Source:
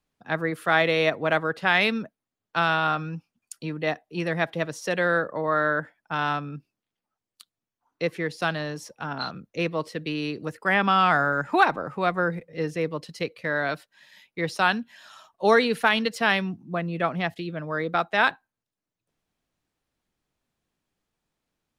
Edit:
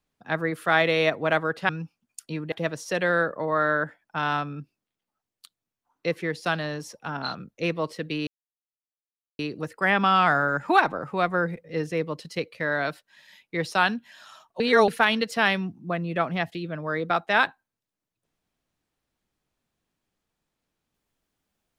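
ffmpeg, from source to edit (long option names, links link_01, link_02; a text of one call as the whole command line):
ffmpeg -i in.wav -filter_complex "[0:a]asplit=6[link_01][link_02][link_03][link_04][link_05][link_06];[link_01]atrim=end=1.692[link_07];[link_02]atrim=start=3.018:end=3.852[link_08];[link_03]atrim=start=4.478:end=10.23,asetpts=PTS-STARTPTS,afade=type=out:start_time=5.748:duration=0.004:curve=hsin,apad=pad_dur=1.12[link_09];[link_04]atrim=start=10.23:end=15.442,asetpts=PTS-STARTPTS,afade=type=in:duration=0.004:curve=hsin[link_10];[link_05]atrim=start=15.438:end=15.722,asetpts=PTS-STARTPTS,areverse[link_11];[link_06]atrim=start=15.718[link_12];[link_07][link_08]acrossfade=duration=0.004:curve1=hsin:curve2=hsin[link_13];[link_09][link_10]concat=n=2:v=0:a=1[link_14];[link_13][link_14]acrossfade=duration=0.004:curve1=hsin:curve2=hsin[link_15];[link_15][link_11]acrossfade=duration=0.004:curve1=hsin:curve2=hsin[link_16];[link_16][link_12]acrossfade=duration=0.004:curve1=hsin:curve2=hsin" out.wav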